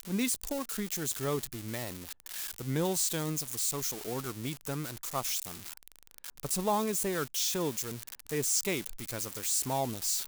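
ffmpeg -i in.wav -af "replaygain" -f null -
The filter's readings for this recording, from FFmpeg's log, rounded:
track_gain = +15.0 dB
track_peak = 0.113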